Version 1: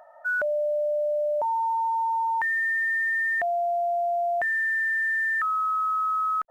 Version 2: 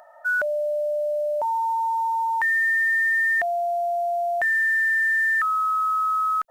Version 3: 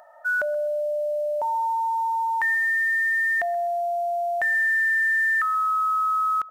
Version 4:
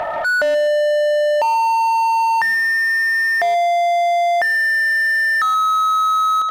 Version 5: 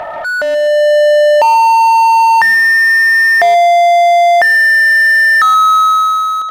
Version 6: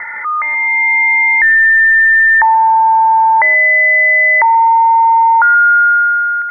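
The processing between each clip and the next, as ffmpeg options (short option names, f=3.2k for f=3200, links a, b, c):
-af "highshelf=f=2.1k:g=10"
-filter_complex "[0:a]asplit=2[a][b];[b]adelay=128,lowpass=f=1.2k:p=1,volume=-17dB,asplit=2[c][d];[d]adelay=128,lowpass=f=1.2k:p=1,volume=0.39,asplit=2[e][f];[f]adelay=128,lowpass=f=1.2k:p=1,volume=0.39[g];[a][c][e][g]amix=inputs=4:normalize=0,volume=-1dB"
-filter_complex "[0:a]asplit=2[a][b];[b]highpass=f=720:p=1,volume=34dB,asoftclip=type=tanh:threshold=-17.5dB[c];[a][c]amix=inputs=2:normalize=0,lowpass=f=1.7k:p=1,volume=-6dB,volume=6.5dB"
-af "dynaudnorm=f=120:g=11:m=9dB"
-af "highpass=600,lowpass=f=2.3k:t=q:w=0.5098,lowpass=f=2.3k:t=q:w=0.6013,lowpass=f=2.3k:t=q:w=0.9,lowpass=f=2.3k:t=q:w=2.563,afreqshift=-2700"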